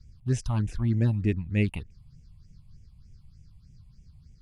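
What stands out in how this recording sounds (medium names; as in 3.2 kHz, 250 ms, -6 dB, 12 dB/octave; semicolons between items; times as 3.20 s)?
phasing stages 6, 3.3 Hz, lowest notch 390–1200 Hz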